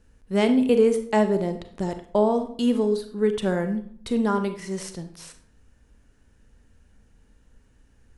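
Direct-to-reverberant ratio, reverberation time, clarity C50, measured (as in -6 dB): 7.5 dB, 0.55 s, 10.5 dB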